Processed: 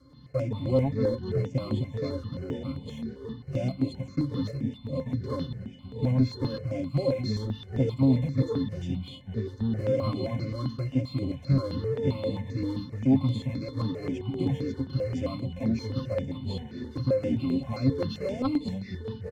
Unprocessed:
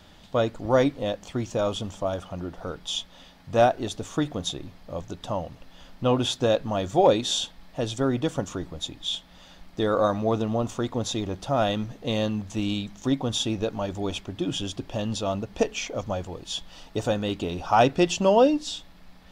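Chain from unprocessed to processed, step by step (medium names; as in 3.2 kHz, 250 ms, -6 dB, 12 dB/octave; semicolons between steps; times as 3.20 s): block-companded coder 3-bit; high-pass 120 Hz 12 dB/octave; peaking EQ 850 Hz -9 dB 2.4 oct; comb 7.4 ms, depth 37%; peak limiter -20 dBFS, peak gain reduction 10 dB; pitch-class resonator C, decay 0.13 s; sine folder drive 6 dB, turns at -20.5 dBFS; ever faster or slower copies 97 ms, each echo -3 st, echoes 2, each echo -6 dB; stepped phaser 7.6 Hz 700–5600 Hz; trim +5.5 dB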